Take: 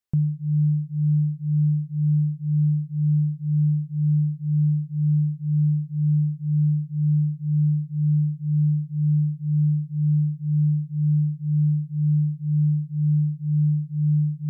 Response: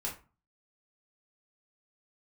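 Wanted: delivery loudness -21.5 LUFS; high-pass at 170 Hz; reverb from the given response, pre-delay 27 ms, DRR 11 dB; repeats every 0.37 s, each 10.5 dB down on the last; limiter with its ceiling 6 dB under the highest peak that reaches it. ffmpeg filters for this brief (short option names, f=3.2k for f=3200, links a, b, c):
-filter_complex "[0:a]highpass=170,alimiter=level_in=2dB:limit=-24dB:level=0:latency=1,volume=-2dB,aecho=1:1:370|740|1110:0.299|0.0896|0.0269,asplit=2[a][b];[1:a]atrim=start_sample=2205,adelay=27[c];[b][c]afir=irnorm=-1:irlink=0,volume=-13dB[d];[a][d]amix=inputs=2:normalize=0,volume=10dB"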